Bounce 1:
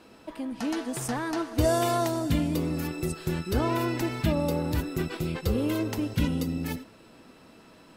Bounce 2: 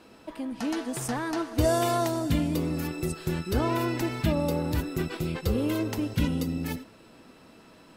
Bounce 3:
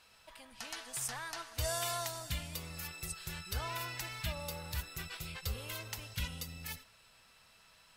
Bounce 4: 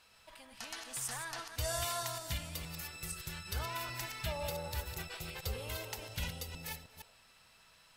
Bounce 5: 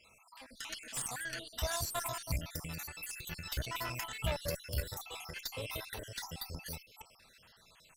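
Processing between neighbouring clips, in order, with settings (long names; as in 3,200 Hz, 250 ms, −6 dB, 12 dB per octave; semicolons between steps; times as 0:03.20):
no processing that can be heard
guitar amp tone stack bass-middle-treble 10-0-10; level −1 dB
delay that plays each chunk backwards 156 ms, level −6.5 dB; gain on a spectral selection 0:04.24–0:07.14, 340–960 Hz +6 dB; level −1 dB
time-frequency cells dropped at random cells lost 56%; harmonic generator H 6 −21 dB, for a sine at −25 dBFS; level +4 dB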